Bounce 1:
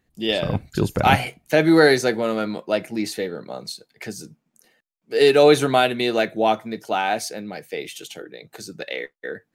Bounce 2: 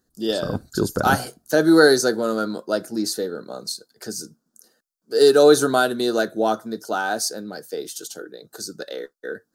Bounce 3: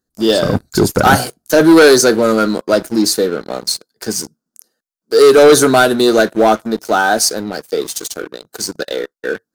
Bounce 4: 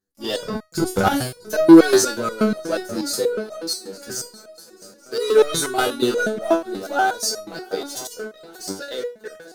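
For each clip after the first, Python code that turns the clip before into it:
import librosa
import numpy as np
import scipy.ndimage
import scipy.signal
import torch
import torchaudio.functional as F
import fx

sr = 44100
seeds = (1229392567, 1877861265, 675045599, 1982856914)

y1 = fx.curve_eq(x, sr, hz=(150.0, 230.0, 430.0, 870.0, 1500.0, 2200.0, 4700.0), db=(0, 6, 7, 1, 10, -16, 12))
y1 = F.gain(torch.from_numpy(y1), -5.5).numpy()
y2 = fx.leveller(y1, sr, passes=3)
y3 = fx.echo_swing(y2, sr, ms=869, ratio=3, feedback_pct=46, wet_db=-18)
y3 = fx.resonator_held(y3, sr, hz=8.3, low_hz=97.0, high_hz=630.0)
y3 = F.gain(torch.from_numpy(y3), 3.5).numpy()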